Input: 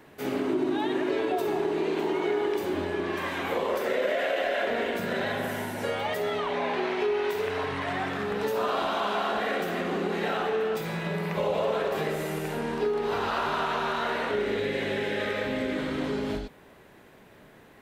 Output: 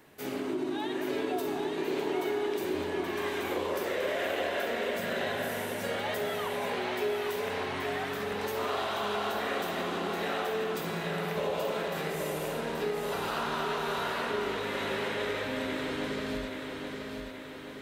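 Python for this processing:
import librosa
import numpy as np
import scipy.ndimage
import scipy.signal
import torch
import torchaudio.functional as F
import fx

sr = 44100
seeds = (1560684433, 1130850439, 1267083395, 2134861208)

p1 = fx.high_shelf(x, sr, hz=3700.0, db=8.0)
p2 = p1 + fx.echo_feedback(p1, sr, ms=828, feedback_pct=56, wet_db=-5.0, dry=0)
y = p2 * 10.0 ** (-6.0 / 20.0)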